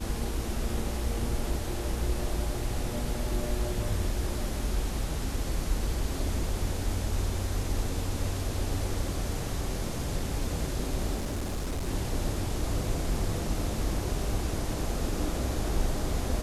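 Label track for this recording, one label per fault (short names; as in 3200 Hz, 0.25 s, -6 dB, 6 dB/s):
11.160000	11.890000	clipped -28 dBFS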